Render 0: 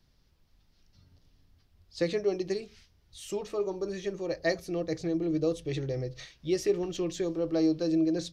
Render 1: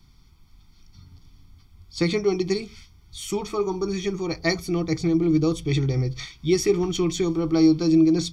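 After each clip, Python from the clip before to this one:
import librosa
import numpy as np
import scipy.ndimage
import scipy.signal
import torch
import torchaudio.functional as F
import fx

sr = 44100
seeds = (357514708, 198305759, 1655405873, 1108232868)

y = x + 0.9 * np.pad(x, (int(0.9 * sr / 1000.0), 0))[:len(x)]
y = y * 10.0 ** (7.5 / 20.0)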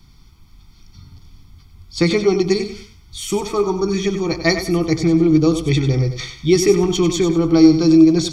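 y = fx.echo_feedback(x, sr, ms=96, feedback_pct=31, wet_db=-9.5)
y = y * 10.0 ** (6.5 / 20.0)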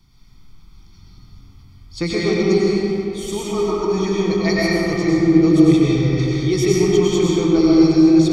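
y = fx.rev_freeverb(x, sr, rt60_s=3.1, hf_ratio=0.5, predelay_ms=75, drr_db=-6.0)
y = y * 10.0 ** (-7.0 / 20.0)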